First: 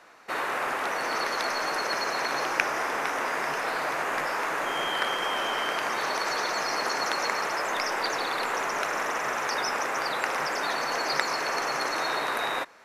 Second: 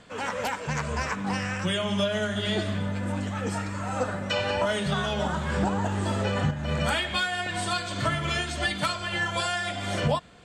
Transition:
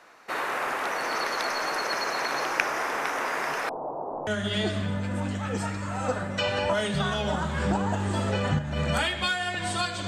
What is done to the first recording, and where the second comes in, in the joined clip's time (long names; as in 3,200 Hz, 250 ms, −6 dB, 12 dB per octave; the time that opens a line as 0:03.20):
first
0:03.69–0:04.27: Butterworth low-pass 920 Hz 48 dB per octave
0:04.27: continue with second from 0:02.19